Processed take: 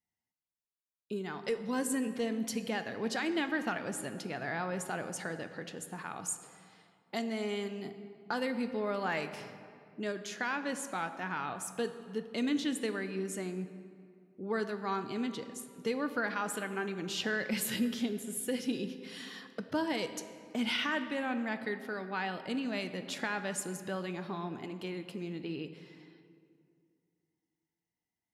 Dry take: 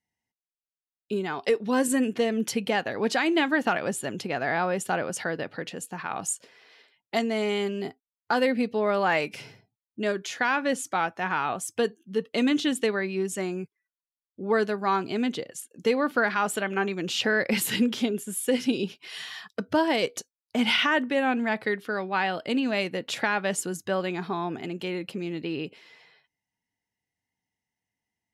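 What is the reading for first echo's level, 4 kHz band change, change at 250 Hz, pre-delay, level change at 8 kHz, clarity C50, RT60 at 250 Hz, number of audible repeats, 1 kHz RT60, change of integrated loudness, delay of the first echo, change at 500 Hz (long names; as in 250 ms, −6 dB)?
no echo audible, −9.0 dB, −7.5 dB, 3 ms, −6.5 dB, 10.5 dB, 2.7 s, no echo audible, 2.3 s, −9.0 dB, no echo audible, −10.0 dB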